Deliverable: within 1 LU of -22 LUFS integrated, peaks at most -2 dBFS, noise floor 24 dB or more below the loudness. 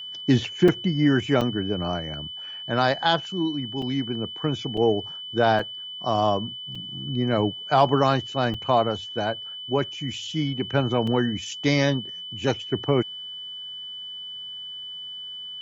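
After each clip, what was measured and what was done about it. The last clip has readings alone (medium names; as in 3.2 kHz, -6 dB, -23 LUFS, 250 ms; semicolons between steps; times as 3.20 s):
dropouts 8; longest dropout 4.3 ms; steady tone 3 kHz; tone level -34 dBFS; loudness -25.0 LUFS; peak level -5.5 dBFS; loudness target -22.0 LUFS
-> interpolate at 0.68/1.41/3.82/4.77/5.59/6.75/8.54/11.07 s, 4.3 ms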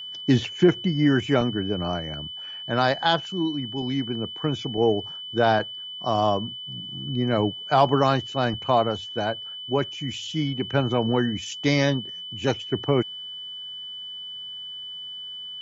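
dropouts 0; steady tone 3 kHz; tone level -34 dBFS
-> band-stop 3 kHz, Q 30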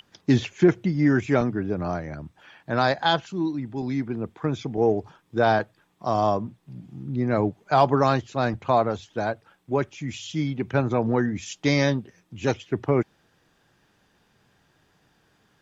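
steady tone not found; loudness -24.5 LUFS; peak level -6.0 dBFS; loudness target -22.0 LUFS
-> trim +2.5 dB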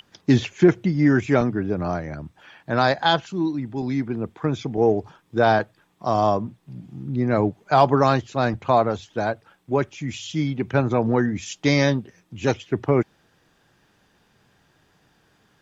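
loudness -22.0 LUFS; peak level -3.5 dBFS; noise floor -63 dBFS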